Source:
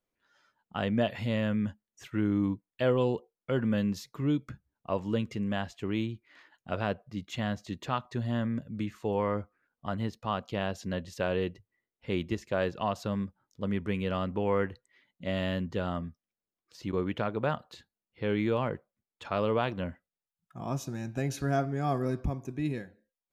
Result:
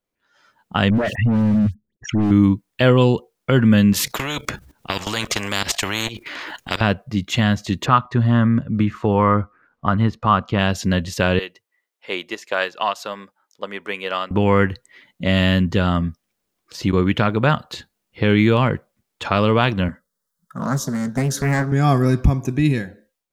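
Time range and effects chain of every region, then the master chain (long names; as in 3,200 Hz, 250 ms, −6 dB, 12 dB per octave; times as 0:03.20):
0:00.90–0:02.31: spectral envelope exaggerated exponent 3 + gain into a clipping stage and back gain 28.5 dB + all-pass dispersion highs, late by 83 ms, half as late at 2,800 Hz
0:03.93–0:06.81: output level in coarse steps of 17 dB + every bin compressed towards the loudest bin 4 to 1
0:07.86–0:10.59: low-pass filter 1,600 Hz 6 dB per octave + parametric band 1,200 Hz +7.5 dB 0.64 octaves
0:11.39–0:14.31: high-pass filter 630 Hz + expander for the loud parts, over −43 dBFS
0:19.88–0:21.72: phaser with its sweep stopped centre 500 Hz, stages 8 + highs frequency-modulated by the lows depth 0.47 ms
whole clip: dynamic equaliser 560 Hz, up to −8 dB, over −43 dBFS, Q 0.7; automatic gain control gain up to 15 dB; level +2.5 dB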